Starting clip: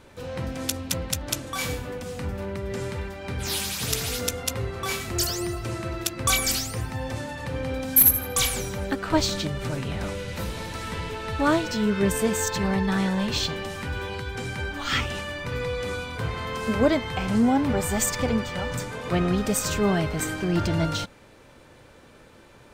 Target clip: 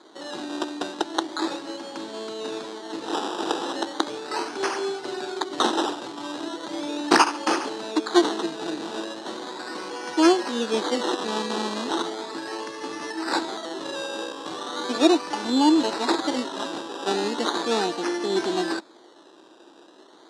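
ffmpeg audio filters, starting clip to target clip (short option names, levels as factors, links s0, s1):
-af "acrusher=samples=18:mix=1:aa=0.000001:lfo=1:lforange=10.8:lforate=0.33,asetrate=49392,aresample=44100,highpass=f=280:w=0.5412,highpass=f=280:w=1.3066,equalizer=f=330:t=q:w=4:g=10,equalizer=f=570:t=q:w=4:g=-5,equalizer=f=860:t=q:w=4:g=5,equalizer=f=2200:t=q:w=4:g=-8,equalizer=f=3900:t=q:w=4:g=9,lowpass=f=8300:w=0.5412,lowpass=f=8300:w=1.3066"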